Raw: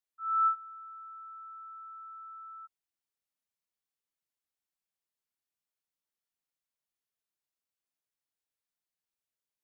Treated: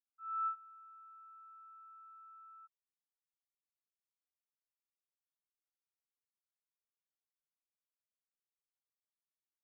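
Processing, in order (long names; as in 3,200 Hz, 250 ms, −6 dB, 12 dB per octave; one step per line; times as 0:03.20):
gain on one half-wave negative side −7 dB
flat-topped band-pass 1,200 Hz, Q 2.6
level −7 dB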